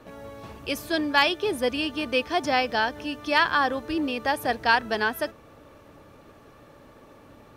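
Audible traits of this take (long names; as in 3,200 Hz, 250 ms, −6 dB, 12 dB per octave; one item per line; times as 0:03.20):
background noise floor −52 dBFS
spectral slope −0.5 dB per octave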